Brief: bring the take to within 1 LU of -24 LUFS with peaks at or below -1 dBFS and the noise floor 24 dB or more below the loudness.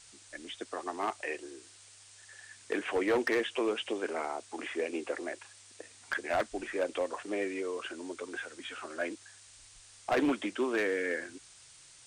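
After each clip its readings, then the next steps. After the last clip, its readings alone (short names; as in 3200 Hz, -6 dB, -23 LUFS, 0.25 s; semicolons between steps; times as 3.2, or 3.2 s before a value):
clipped 0.9%; flat tops at -23.5 dBFS; noise floor -56 dBFS; noise floor target -59 dBFS; loudness -34.5 LUFS; peak -23.5 dBFS; loudness target -24.0 LUFS
-> clip repair -23.5 dBFS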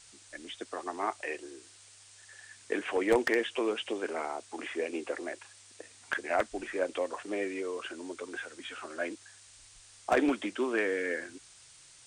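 clipped 0.0%; noise floor -56 dBFS; noise floor target -58 dBFS
-> denoiser 6 dB, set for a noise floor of -56 dBFS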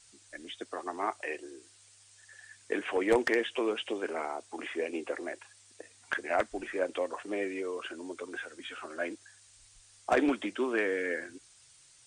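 noise floor -60 dBFS; loudness -33.5 LUFS; peak -14.5 dBFS; loudness target -24.0 LUFS
-> gain +9.5 dB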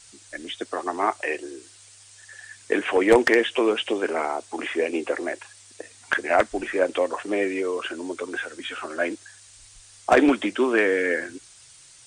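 loudness -24.0 LUFS; peak -5.0 dBFS; noise floor -51 dBFS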